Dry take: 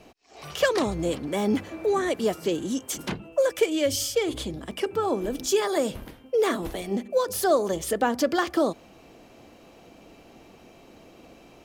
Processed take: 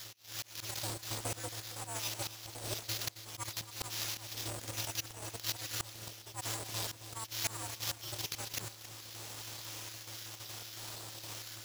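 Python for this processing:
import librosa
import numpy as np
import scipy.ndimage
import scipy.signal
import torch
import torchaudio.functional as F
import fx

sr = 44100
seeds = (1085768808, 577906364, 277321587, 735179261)

y = fx.spec_dropout(x, sr, seeds[0], share_pct=36)
y = fx.sample_hold(y, sr, seeds[1], rate_hz=8600.0, jitter_pct=0)
y = np.abs(y)
y = fx.hpss(y, sr, part='percussive', gain_db=-15)
y = fx.auto_swell(y, sr, attack_ms=622.0)
y = fx.bass_treble(y, sr, bass_db=-11, treble_db=15)
y = fx.rider(y, sr, range_db=4, speed_s=0.5)
y = fx.peak_eq(y, sr, hz=3900.0, db=6.5, octaves=2.0)
y = fx.echo_feedback(y, sr, ms=272, feedback_pct=33, wet_db=-13)
y = y * np.sign(np.sin(2.0 * np.pi * 110.0 * np.arange(len(y)) / sr))
y = y * 10.0 ** (4.5 / 20.0)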